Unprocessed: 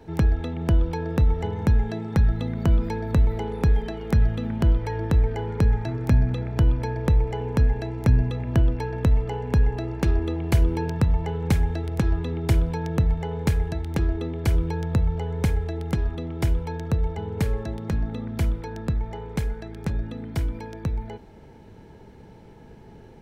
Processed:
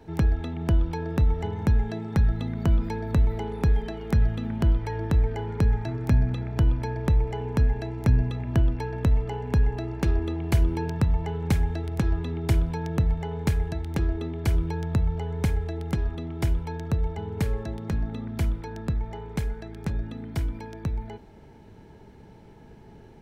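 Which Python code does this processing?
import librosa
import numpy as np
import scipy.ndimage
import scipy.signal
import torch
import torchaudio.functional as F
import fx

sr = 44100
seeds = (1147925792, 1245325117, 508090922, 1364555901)

y = fx.notch(x, sr, hz=500.0, q=12.0)
y = F.gain(torch.from_numpy(y), -2.0).numpy()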